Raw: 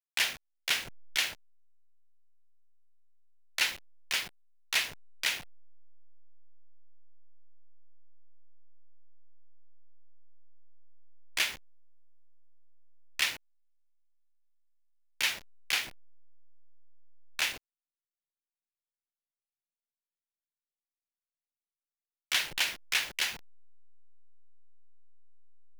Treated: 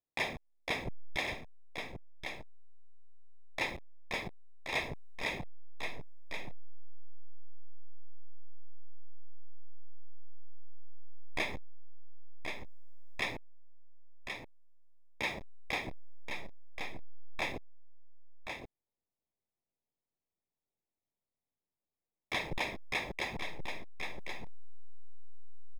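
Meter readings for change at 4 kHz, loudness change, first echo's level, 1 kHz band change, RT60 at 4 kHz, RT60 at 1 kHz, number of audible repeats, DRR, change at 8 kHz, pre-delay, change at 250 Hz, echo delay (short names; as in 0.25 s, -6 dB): -10.5 dB, -8.5 dB, -6.5 dB, +3.0 dB, none, none, 1, none, -15.5 dB, none, +11.0 dB, 1.077 s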